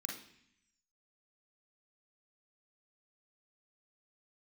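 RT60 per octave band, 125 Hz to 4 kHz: 1.0, 0.95, 0.65, 0.65, 0.95, 0.90 seconds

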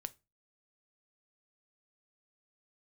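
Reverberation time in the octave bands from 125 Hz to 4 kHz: 0.40, 0.35, 0.30, 0.25, 0.25, 0.20 seconds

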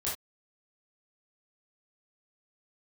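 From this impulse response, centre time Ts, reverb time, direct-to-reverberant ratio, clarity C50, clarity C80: 36 ms, non-exponential decay, −7.5 dB, 4.5 dB, 12.0 dB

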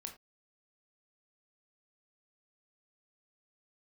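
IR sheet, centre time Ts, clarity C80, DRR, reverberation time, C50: 13 ms, 16.5 dB, 3.5 dB, non-exponential decay, 10.5 dB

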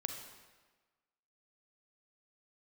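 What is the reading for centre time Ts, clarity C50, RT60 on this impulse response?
35 ms, 5.5 dB, 1.3 s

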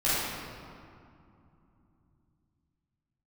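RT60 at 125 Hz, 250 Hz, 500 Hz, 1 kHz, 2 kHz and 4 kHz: 4.8, 4.2, 2.6, 2.7, 1.9, 1.4 seconds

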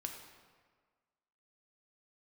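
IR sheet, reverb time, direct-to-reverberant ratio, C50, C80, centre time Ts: 1.6 s, 2.5 dB, 5.0 dB, 6.5 dB, 39 ms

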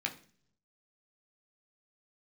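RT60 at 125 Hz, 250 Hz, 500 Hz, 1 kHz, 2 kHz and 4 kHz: 1.0, 0.80, 0.55, 0.40, 0.45, 0.50 seconds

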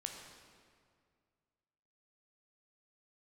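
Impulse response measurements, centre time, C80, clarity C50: 58 ms, 5.0 dB, 3.5 dB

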